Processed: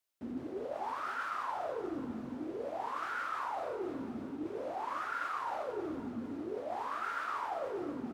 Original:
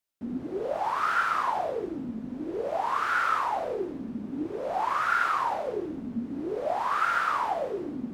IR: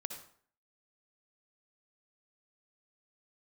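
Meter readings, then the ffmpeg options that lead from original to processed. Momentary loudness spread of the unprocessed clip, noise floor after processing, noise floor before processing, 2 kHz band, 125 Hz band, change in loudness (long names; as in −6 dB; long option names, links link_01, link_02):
10 LU, −45 dBFS, −39 dBFS, −11.5 dB, −7.5 dB, −9.5 dB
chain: -filter_complex "[0:a]highpass=73,equalizer=frequency=190:width_type=o:width=0.71:gain=-10,areverse,acompressor=threshold=-36dB:ratio=6,areverse,asplit=2[link_01][link_02];[link_02]adelay=45,volume=-11.5dB[link_03];[link_01][link_03]amix=inputs=2:normalize=0,aecho=1:1:272|544|816|1088|1360|1632:0.211|0.118|0.0663|0.0371|0.0208|0.0116"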